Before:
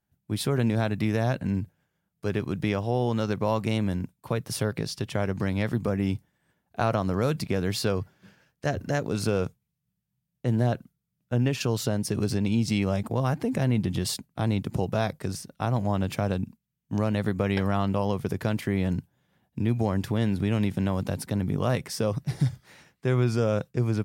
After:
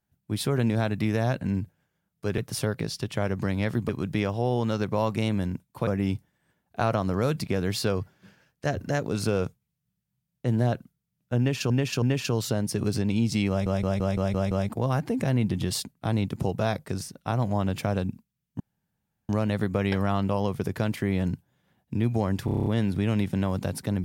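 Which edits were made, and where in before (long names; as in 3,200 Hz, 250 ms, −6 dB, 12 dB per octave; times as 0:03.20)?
0:04.36–0:05.87: move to 0:02.38
0:11.38–0:11.70: repeat, 3 plays
0:12.85: stutter 0.17 s, 7 plays
0:16.94: splice in room tone 0.69 s
0:20.10: stutter 0.03 s, 8 plays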